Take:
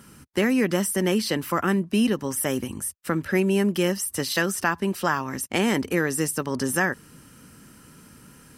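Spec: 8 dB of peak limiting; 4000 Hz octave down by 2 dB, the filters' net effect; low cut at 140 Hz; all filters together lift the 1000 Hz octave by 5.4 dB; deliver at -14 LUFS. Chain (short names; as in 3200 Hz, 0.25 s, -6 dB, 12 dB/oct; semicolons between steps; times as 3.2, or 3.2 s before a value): HPF 140 Hz; bell 1000 Hz +7 dB; bell 4000 Hz -3.5 dB; gain +11.5 dB; limiter -2 dBFS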